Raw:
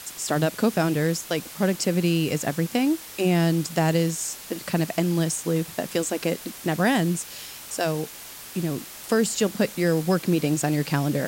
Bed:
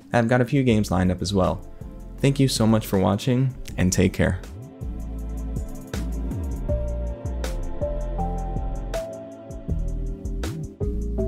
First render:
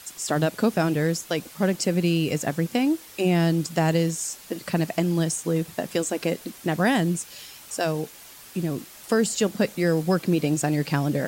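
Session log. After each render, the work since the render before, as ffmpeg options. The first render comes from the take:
-af "afftdn=nr=6:nf=-41"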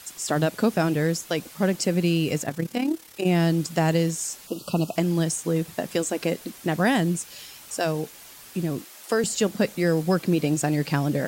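-filter_complex "[0:a]asettb=1/sr,asplit=3[s0][s1][s2];[s0]atrim=end=2.434[s3];[s1]atrim=start=2.43:end=3.26,asetpts=PTS-STARTPTS,afade=t=in:d=0.004:c=qsin,afade=t=out:st=0.826:d=0.004:c=qsin,tremolo=f=35:d=0.667[s4];[s2]atrim=start=3.256[s5];[s3][s4]acrossfade=d=0.004:c1=hsin:c2=qsin[s6];[s6][s5]acrossfade=d=0.004:c1=qsin:c2=hsin,asettb=1/sr,asplit=3[s7][s8][s9];[s7]atrim=end=4.474[s10];[s8]atrim=start=4.47:end=4.96,asetpts=PTS-STARTPTS,afade=t=in:d=0.004:c=qsin,afade=t=out:st=0.486:d=0.004:c=qsin,asuperstop=centerf=1900:order=20:qfactor=1.7[s11];[s9]atrim=start=4.956[s12];[s10][s11]acrossfade=d=0.004:c1=hsin:c2=qsin[s13];[s13][s12]acrossfade=d=0.004:c1=qsin:c2=hsin,asettb=1/sr,asplit=3[s14][s15][s16];[s14]atrim=end=8.814[s17];[s15]atrim=start=8.81:end=9.24,asetpts=PTS-STARTPTS,afade=t=in:d=0.004:c=qsin,afade=t=out:st=0.426:d=0.004:c=qsin,highpass=300[s18];[s16]atrim=start=9.236[s19];[s17][s18]acrossfade=d=0.004:c1=hsin:c2=qsin[s20];[s20][s19]acrossfade=d=0.004:c1=qsin:c2=hsin"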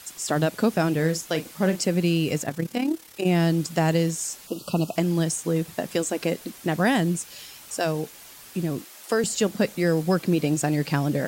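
-filter_complex "[0:a]asettb=1/sr,asplit=3[s0][s1][s2];[s0]atrim=end=0.954[s3];[s1]atrim=start=0.95:end=1.83,asetpts=PTS-STARTPTS,afade=t=in:d=0.004:c=qsin,afade=t=out:st=0.876:d=0.004:c=qsin,asplit=2[s4][s5];[s5]adelay=38,volume=0.282[s6];[s4][s6]amix=inputs=2:normalize=0,atrim=end_sample=38808[s7];[s2]atrim=start=1.826[s8];[s3][s7]acrossfade=d=0.004:c1=hsin:c2=qsin[s9];[s9][s8]acrossfade=d=0.004:c1=qsin:c2=hsin"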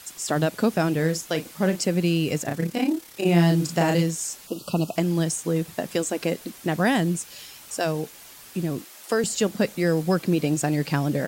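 -filter_complex "[0:a]asplit=3[s0][s1][s2];[s0]afade=t=out:st=2.45:d=0.02[s3];[s1]asplit=2[s4][s5];[s5]adelay=35,volume=0.708[s6];[s4][s6]amix=inputs=2:normalize=0,afade=t=in:st=2.45:d=0.02,afade=t=out:st=4.01:d=0.02[s7];[s2]afade=t=in:st=4.01:d=0.02[s8];[s3][s7][s8]amix=inputs=3:normalize=0"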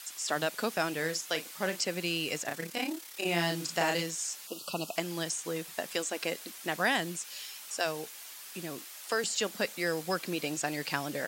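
-filter_complex "[0:a]acrossover=split=6600[s0][s1];[s1]acompressor=threshold=0.00794:ratio=4:attack=1:release=60[s2];[s0][s2]amix=inputs=2:normalize=0,highpass=f=1300:p=1"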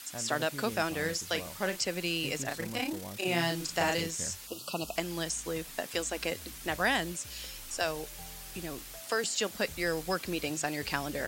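-filter_complex "[1:a]volume=0.0668[s0];[0:a][s0]amix=inputs=2:normalize=0"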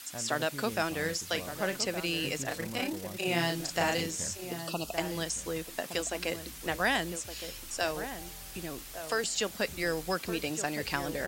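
-filter_complex "[0:a]asplit=2[s0][s1];[s1]adelay=1166,volume=0.355,highshelf=f=4000:g=-26.2[s2];[s0][s2]amix=inputs=2:normalize=0"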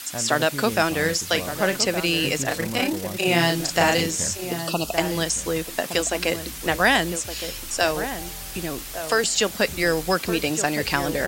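-af "volume=3.16,alimiter=limit=0.708:level=0:latency=1"

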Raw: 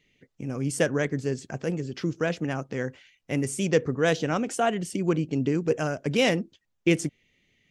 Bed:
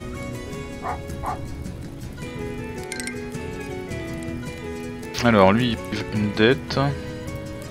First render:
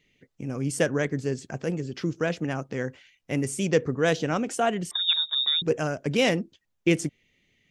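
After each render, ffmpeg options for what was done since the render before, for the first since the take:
-filter_complex "[0:a]asettb=1/sr,asplit=3[s0][s1][s2];[s0]atrim=end=4.914[s3];[s1]atrim=start=4.91:end=5.62,asetpts=PTS-STARTPTS,afade=t=in:d=0.004:c=qsin,afade=t=out:st=0.706:d=0.004:c=qsin,lowpass=f=3300:t=q:w=0.5098,lowpass=f=3300:t=q:w=0.6013,lowpass=f=3300:t=q:w=0.9,lowpass=f=3300:t=q:w=2.563,afreqshift=-3900[s4];[s2]atrim=start=5.616[s5];[s3][s4]acrossfade=d=0.004:c1=hsin:c2=qsin[s6];[s6][s5]acrossfade=d=0.004:c1=qsin:c2=hsin"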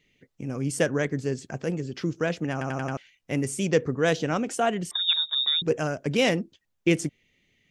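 -filter_complex "[0:a]asplit=6[s0][s1][s2][s3][s4][s5];[s0]atrim=end=2.612[s6];[s1]atrim=start=2.518:end=2.612[s7];[s2]atrim=start=2.518:end=2.612[s8];[s3]atrim=start=2.518:end=2.612[s9];[s4]atrim=start=2.518:end=2.612[s10];[s5]atrim=start=2.968[s11];[s6][s7]acrossfade=d=0.004:c1=hsin:c2=hsin[s12];[s12][s8]acrossfade=d=0.004:c1=hsin:c2=hsin[s13];[s13][s9]acrossfade=d=0.004:c1=hsin:c2=hsin[s14];[s14][s10]acrossfade=d=0.004:c1=hsin:c2=hsin[s15];[s15][s11]acrossfade=d=0.004:c1=hsin:c2=hsin"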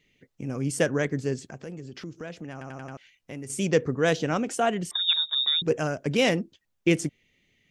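-filter_complex "[0:a]asettb=1/sr,asplit=3[s0][s1][s2];[s0]atrim=end=1.414[s3];[s1]atrim=start=1.41:end=3.5,asetpts=PTS-STARTPTS,afade=t=in:d=0.004:c=qsin,afade=t=out:st=2.086:d=0.004:c=qsin,acompressor=threshold=0.0112:ratio=2.5:attack=3.2:release=140:knee=1:detection=peak[s4];[s2]atrim=start=3.496[s5];[s3][s4]acrossfade=d=0.004:c1=hsin:c2=qsin[s6];[s6][s5]acrossfade=d=0.004:c1=qsin:c2=hsin"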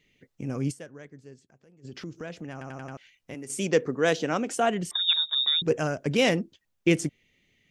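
-filter_complex "[0:a]asettb=1/sr,asplit=3[s0][s1][s2];[s0]atrim=end=3.344[s3];[s1]atrim=start=3.34:end=4.5,asetpts=PTS-STARTPTS,afade=t=in:d=0.004:c=qsin,afade=t=out:st=1.156:d=0.004:c=qsin,highpass=200[s4];[s2]atrim=start=4.496[s5];[s3][s4]acrossfade=d=0.004:c1=hsin:c2=qsin[s6];[s6][s5]acrossfade=d=0.004:c1=qsin:c2=hsin,asplit=3[s7][s8][s9];[s7]atrim=end=0.84,asetpts=PTS-STARTPTS,afade=t=out:st=0.71:d=0.13:c=exp:silence=0.105925[s10];[s8]atrim=start=0.84:end=1.72,asetpts=PTS-STARTPTS,volume=0.106[s11];[s9]atrim=start=1.72,asetpts=PTS-STARTPTS,afade=t=in:d=0.13:c=exp:silence=0.105925[s12];[s10][s11][s12]concat=n=3:v=0:a=1"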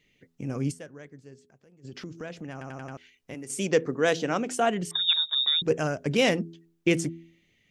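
-af "bandreject=f=83.18:t=h:w=4,bandreject=f=166.36:t=h:w=4,bandreject=f=249.54:t=h:w=4,bandreject=f=332.72:t=h:w=4,bandreject=f=415.9:t=h:w=4"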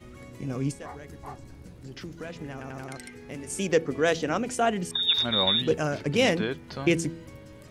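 -filter_complex "[1:a]volume=0.2[s0];[0:a][s0]amix=inputs=2:normalize=0"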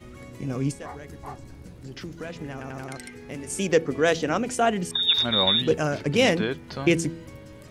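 -af "volume=1.33"

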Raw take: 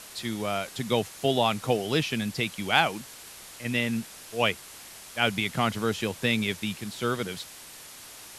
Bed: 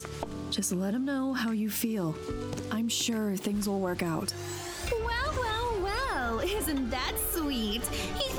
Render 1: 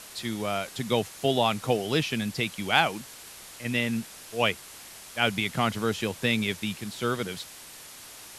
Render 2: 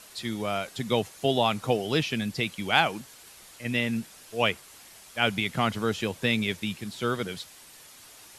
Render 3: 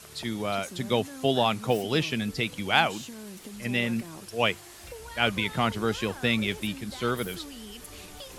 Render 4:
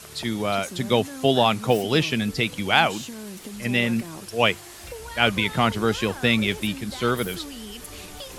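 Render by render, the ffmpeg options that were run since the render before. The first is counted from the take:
-af anull
-af "afftdn=nr=6:nf=-46"
-filter_complex "[1:a]volume=0.237[s0];[0:a][s0]amix=inputs=2:normalize=0"
-af "volume=1.78,alimiter=limit=0.708:level=0:latency=1"

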